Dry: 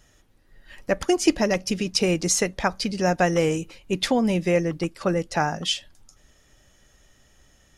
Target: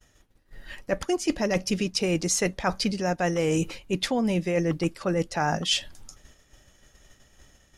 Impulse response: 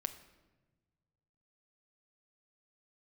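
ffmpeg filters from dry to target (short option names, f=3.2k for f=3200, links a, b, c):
-af "agate=range=-33dB:threshold=-50dB:ratio=3:detection=peak,areverse,acompressor=threshold=-29dB:ratio=12,areverse,volume=7.5dB"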